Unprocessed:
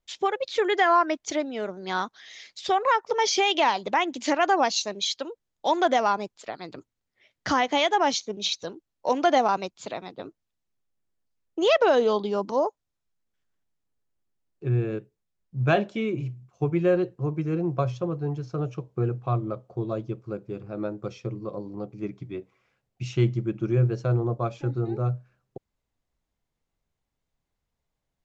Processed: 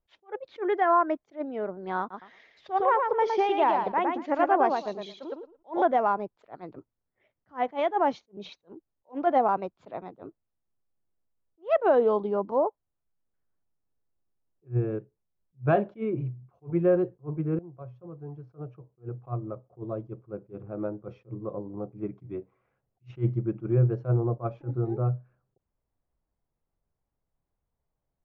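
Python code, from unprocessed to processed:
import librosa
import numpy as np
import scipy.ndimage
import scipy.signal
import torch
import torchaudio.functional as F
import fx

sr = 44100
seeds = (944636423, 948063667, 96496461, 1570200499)

y = fx.echo_feedback(x, sr, ms=112, feedback_pct=18, wet_db=-4.5, at=(1.99, 5.82))
y = fx.edit(y, sr, fx.fade_in_from(start_s=17.59, length_s=3.48, floor_db=-19.0), tone=tone)
y = scipy.signal.sosfilt(scipy.signal.butter(2, 1200.0, 'lowpass', fs=sr, output='sos'), y)
y = fx.peak_eq(y, sr, hz=230.0, db=-2.5, octaves=0.77)
y = fx.attack_slew(y, sr, db_per_s=330.0)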